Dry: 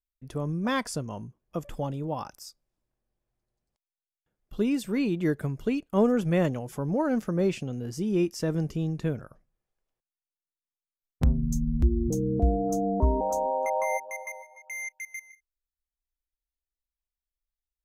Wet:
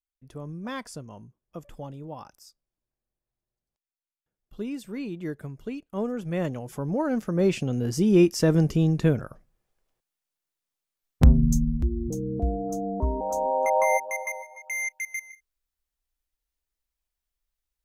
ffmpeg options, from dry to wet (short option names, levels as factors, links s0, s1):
-af "volume=6.68,afade=t=in:st=6.21:d=0.5:silence=0.446684,afade=t=in:st=7.26:d=0.57:silence=0.421697,afade=t=out:st=11.43:d=0.4:silence=0.298538,afade=t=in:st=13.2:d=0.62:silence=0.354813"